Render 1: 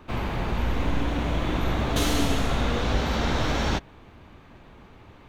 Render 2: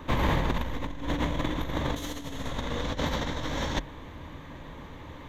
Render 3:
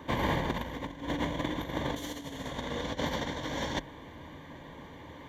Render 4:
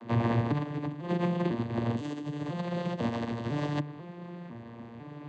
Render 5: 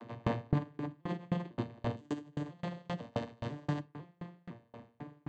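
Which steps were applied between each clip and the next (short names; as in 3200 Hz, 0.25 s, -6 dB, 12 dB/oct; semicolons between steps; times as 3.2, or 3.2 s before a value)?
ripple EQ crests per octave 1.1, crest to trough 7 dB; negative-ratio compressor -28 dBFS, ratio -0.5
notch comb 1300 Hz; gain -1.5 dB
arpeggiated vocoder major triad, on A#2, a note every 0.499 s; gain +4.5 dB
reverb RT60 0.45 s, pre-delay 7 ms, DRR 9 dB; dB-ramp tremolo decaying 3.8 Hz, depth 36 dB; gain +2.5 dB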